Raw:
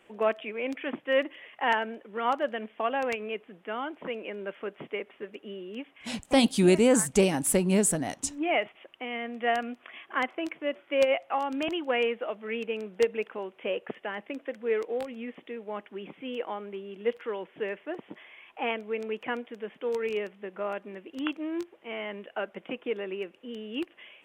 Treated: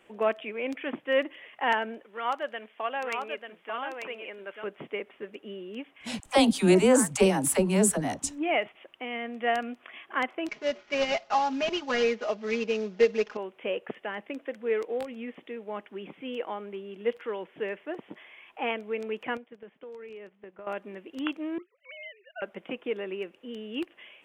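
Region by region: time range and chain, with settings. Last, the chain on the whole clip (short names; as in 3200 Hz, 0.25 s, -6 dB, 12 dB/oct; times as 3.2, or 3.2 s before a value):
2.04–4.64 HPF 780 Hz 6 dB/oct + echo 0.891 s -5.5 dB
6.2–8.24 bell 1000 Hz +4.5 dB 1.2 oct + dispersion lows, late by 59 ms, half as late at 450 Hz
10.48–13.37 CVSD 32 kbps + comb 4.8 ms, depth 90%
19.37–20.67 gate -42 dBFS, range -11 dB + high shelf 5500 Hz -11.5 dB + compressor 5:1, threshold -42 dBFS
21.58–22.42 sine-wave speech + HPF 990 Hz
whole clip: dry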